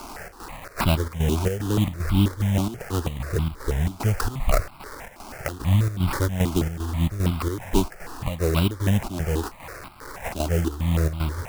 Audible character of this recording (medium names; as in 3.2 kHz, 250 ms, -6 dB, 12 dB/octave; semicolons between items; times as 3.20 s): a quantiser's noise floor 6-bit, dither triangular; chopped level 2.5 Hz, depth 65%, duty 70%; aliases and images of a low sample rate 3.4 kHz, jitter 20%; notches that jump at a steady rate 6.2 Hz 490–1800 Hz